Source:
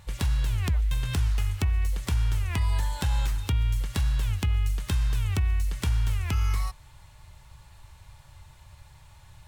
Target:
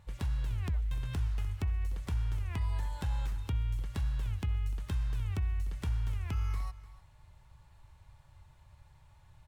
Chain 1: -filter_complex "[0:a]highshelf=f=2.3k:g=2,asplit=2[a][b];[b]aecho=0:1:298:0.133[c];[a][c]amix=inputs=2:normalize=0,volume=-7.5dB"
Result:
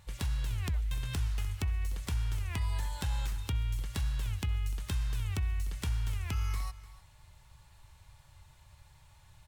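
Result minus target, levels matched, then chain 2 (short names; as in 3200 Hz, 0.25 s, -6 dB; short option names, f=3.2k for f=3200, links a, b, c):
4000 Hz band +7.0 dB
-filter_complex "[0:a]highshelf=f=2.3k:g=-8.5,asplit=2[a][b];[b]aecho=0:1:298:0.133[c];[a][c]amix=inputs=2:normalize=0,volume=-7.5dB"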